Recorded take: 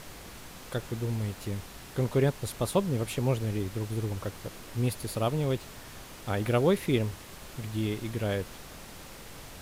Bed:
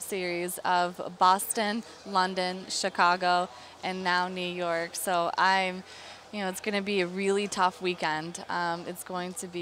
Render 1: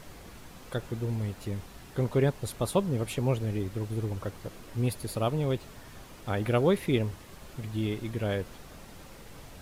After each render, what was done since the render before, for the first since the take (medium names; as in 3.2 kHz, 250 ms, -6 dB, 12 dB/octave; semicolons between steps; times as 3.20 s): noise reduction 6 dB, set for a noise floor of -47 dBFS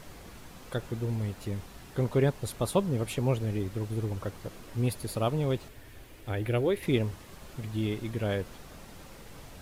5.68–6.83 s: FFT filter 120 Hz 0 dB, 170 Hz -13 dB, 310 Hz 0 dB, 500 Hz -3 dB, 1.2 kHz -9 dB, 1.7 kHz -2 dB, 2.4 kHz -1 dB, 3.8 kHz -4 dB, 5.8 kHz -7 dB, 15 kHz 0 dB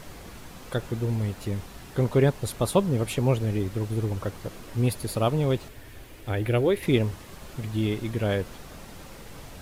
trim +4.5 dB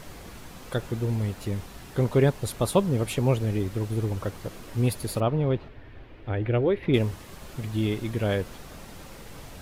5.20–6.94 s: distance through air 330 m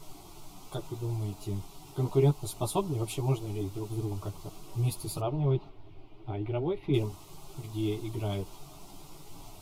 chorus voices 4, 0.66 Hz, delay 12 ms, depth 2.7 ms; static phaser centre 340 Hz, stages 8